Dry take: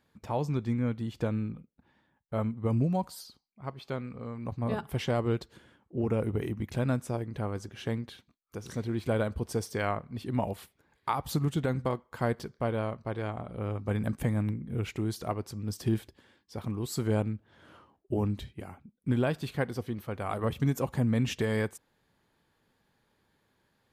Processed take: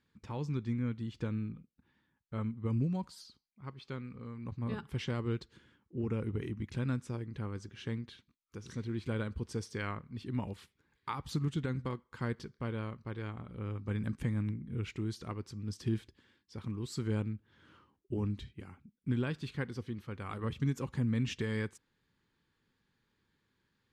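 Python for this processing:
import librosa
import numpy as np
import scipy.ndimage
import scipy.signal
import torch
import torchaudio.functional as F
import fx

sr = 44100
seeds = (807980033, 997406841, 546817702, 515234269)

y = scipy.signal.sosfilt(scipy.signal.butter(2, 6800.0, 'lowpass', fs=sr, output='sos'), x)
y = fx.peak_eq(y, sr, hz=670.0, db=-14.5, octaves=0.72)
y = y * 10.0 ** (-4.0 / 20.0)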